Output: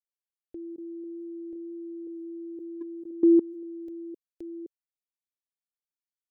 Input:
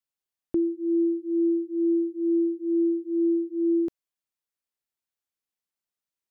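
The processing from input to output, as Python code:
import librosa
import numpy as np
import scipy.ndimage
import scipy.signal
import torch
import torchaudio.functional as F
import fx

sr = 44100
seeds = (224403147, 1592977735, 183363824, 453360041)

y = fx.reverse_delay(x, sr, ms=518, wet_db=-6.0)
y = fx.fixed_phaser(y, sr, hz=460.0, stages=4)
y = fx.level_steps(y, sr, step_db=22)
y = F.gain(torch.from_numpy(y), 5.5).numpy()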